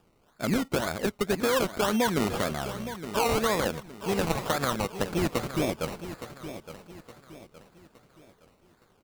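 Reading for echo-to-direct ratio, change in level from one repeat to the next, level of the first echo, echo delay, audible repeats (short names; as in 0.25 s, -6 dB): -11.5 dB, -8.0 dB, -12.0 dB, 0.866 s, 3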